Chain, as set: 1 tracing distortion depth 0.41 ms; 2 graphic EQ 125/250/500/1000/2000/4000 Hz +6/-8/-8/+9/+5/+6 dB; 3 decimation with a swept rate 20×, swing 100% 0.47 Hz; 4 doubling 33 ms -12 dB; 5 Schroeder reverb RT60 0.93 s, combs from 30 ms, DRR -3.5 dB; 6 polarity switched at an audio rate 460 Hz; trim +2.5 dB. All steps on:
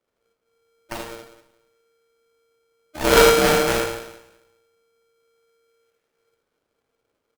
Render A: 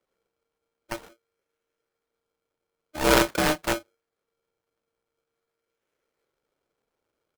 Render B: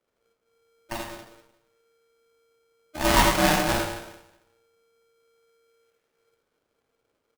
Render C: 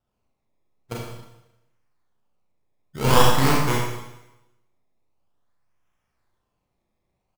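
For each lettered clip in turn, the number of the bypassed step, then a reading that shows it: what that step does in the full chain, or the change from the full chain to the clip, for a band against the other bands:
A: 5, loudness change -6.5 LU; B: 1, 500 Hz band -7.5 dB; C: 6, momentary loudness spread change -1 LU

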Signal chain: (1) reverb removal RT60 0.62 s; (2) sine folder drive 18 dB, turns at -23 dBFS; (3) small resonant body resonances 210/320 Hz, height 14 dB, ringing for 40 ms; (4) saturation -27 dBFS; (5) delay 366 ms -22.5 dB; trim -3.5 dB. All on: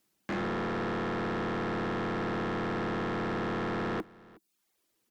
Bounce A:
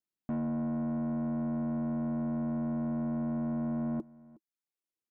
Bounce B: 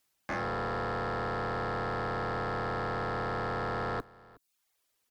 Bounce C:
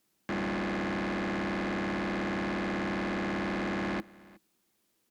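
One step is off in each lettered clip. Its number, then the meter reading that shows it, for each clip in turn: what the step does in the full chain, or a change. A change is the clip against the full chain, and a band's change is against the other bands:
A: 2, 1 kHz band -11.5 dB; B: 3, 250 Hz band -7.0 dB; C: 1, 2 kHz band +3.5 dB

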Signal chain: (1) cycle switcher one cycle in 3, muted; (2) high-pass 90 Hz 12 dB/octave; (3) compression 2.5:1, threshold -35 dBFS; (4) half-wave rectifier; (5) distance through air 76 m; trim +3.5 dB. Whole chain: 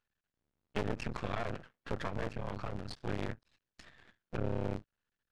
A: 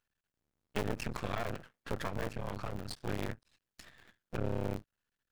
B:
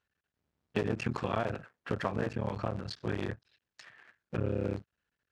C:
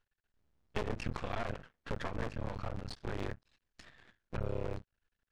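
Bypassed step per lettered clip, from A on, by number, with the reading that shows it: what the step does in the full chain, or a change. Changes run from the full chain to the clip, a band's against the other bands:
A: 5, 8 kHz band +6.5 dB; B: 4, 8 kHz band -2.0 dB; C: 2, 250 Hz band -2.0 dB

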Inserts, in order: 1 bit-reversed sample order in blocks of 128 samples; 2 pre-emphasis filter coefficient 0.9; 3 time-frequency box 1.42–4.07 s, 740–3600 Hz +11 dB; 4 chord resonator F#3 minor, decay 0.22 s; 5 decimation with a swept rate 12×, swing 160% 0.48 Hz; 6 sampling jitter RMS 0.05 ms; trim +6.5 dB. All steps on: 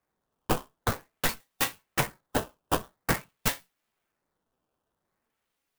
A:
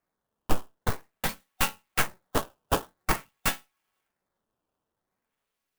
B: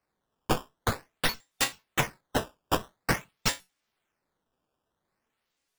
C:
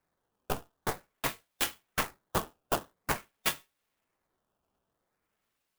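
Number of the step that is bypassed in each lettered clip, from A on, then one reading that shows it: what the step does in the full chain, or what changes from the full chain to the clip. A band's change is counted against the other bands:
2, momentary loudness spread change +2 LU; 6, 4 kHz band +3.0 dB; 1, 125 Hz band -4.5 dB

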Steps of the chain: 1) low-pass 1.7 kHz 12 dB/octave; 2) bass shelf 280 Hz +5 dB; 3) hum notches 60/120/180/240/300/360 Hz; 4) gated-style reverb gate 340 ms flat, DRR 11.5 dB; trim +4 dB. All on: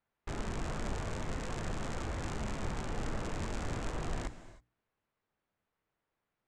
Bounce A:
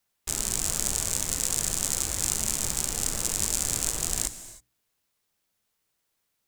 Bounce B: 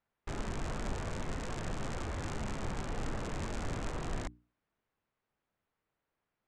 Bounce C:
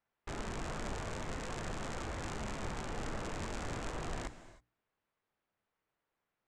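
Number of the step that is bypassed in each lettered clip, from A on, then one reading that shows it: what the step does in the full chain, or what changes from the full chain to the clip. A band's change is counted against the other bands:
1, 8 kHz band +26.5 dB; 4, momentary loudness spread change -1 LU; 2, 125 Hz band -4.0 dB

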